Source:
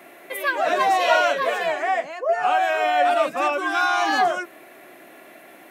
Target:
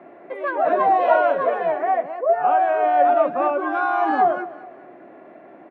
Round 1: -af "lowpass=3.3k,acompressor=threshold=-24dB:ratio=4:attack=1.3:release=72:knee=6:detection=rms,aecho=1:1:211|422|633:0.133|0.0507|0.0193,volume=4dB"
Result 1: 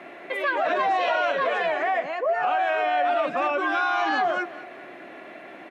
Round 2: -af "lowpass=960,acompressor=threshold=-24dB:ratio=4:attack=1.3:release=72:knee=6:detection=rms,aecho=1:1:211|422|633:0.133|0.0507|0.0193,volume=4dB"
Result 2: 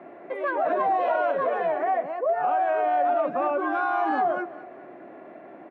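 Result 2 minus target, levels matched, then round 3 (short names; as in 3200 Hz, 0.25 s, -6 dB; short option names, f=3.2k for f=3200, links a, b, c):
compressor: peak gain reduction +10.5 dB
-af "lowpass=960,aecho=1:1:211|422|633:0.133|0.0507|0.0193,volume=4dB"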